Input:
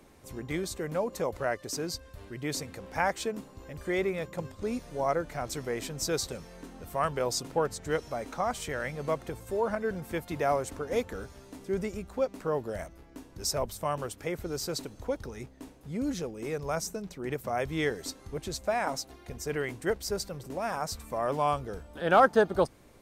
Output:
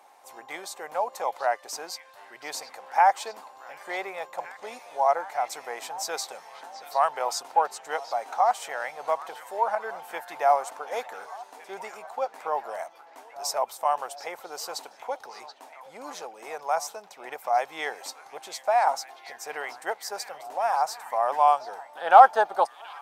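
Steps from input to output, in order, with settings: resonant high-pass 800 Hz, resonance Q 4.9; delay with a stepping band-pass 0.73 s, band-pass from 3500 Hz, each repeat -0.7 oct, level -9.5 dB

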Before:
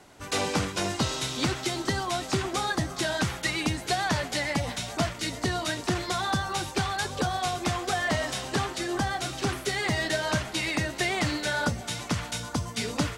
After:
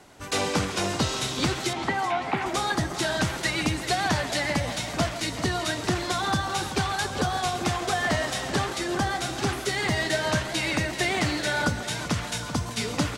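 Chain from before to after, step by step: 1.73–2.46 speaker cabinet 190–2800 Hz, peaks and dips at 370 Hz -7 dB, 850 Hz +9 dB, 2200 Hz +6 dB; speakerphone echo 0.14 s, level -11 dB; warbling echo 0.387 s, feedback 47%, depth 142 cents, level -12 dB; gain +1.5 dB

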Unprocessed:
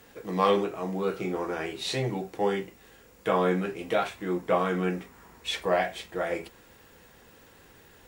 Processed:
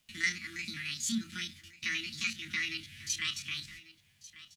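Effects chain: stepped spectrum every 50 ms; LPF 5800 Hz 24 dB/oct; gate with hold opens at -45 dBFS; elliptic band-stop 110–1200 Hz, stop band 70 dB; in parallel at +2.5 dB: compressor 16:1, threshold -48 dBFS, peak gain reduction 23.5 dB; on the sum: wide varispeed 1.77×; dynamic EQ 220 Hz, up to +5 dB, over -55 dBFS, Q 1.3; requantised 12-bit, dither none; on a send: echo 1.143 s -18 dB

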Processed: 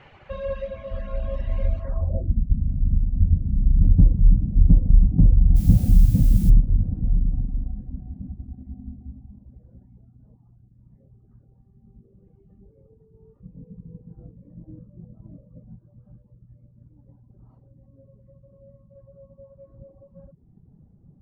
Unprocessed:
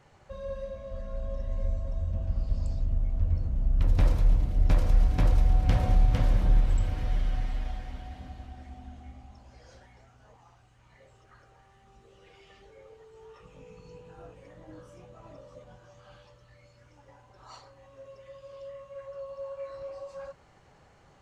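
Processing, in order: low-pass sweep 2700 Hz -> 200 Hz, 1.79–2.41; reverb removal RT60 0.84 s; 5.55–6.49 added noise blue -52 dBFS; gain +8.5 dB

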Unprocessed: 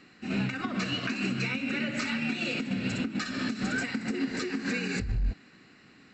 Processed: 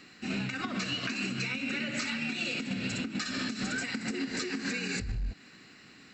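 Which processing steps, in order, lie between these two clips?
high shelf 2900 Hz +9 dB; compressor, threshold -30 dBFS, peak gain reduction 7 dB

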